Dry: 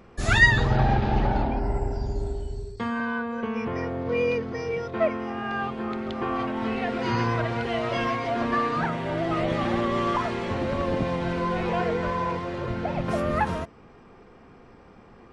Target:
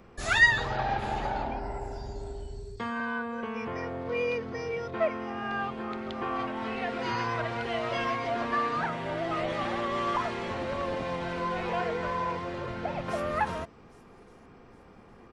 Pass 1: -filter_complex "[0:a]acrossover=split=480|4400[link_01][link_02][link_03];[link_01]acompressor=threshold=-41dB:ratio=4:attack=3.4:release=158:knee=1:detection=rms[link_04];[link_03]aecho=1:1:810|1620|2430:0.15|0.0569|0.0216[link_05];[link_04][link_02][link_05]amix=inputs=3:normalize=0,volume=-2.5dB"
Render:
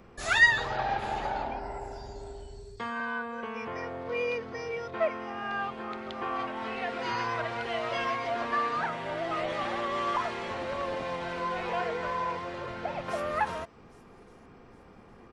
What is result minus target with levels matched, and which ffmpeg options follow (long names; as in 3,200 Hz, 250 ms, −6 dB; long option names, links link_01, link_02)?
downward compressor: peak gain reduction +6 dB
-filter_complex "[0:a]acrossover=split=480|4400[link_01][link_02][link_03];[link_01]acompressor=threshold=-33dB:ratio=4:attack=3.4:release=158:knee=1:detection=rms[link_04];[link_03]aecho=1:1:810|1620|2430:0.15|0.0569|0.0216[link_05];[link_04][link_02][link_05]amix=inputs=3:normalize=0,volume=-2.5dB"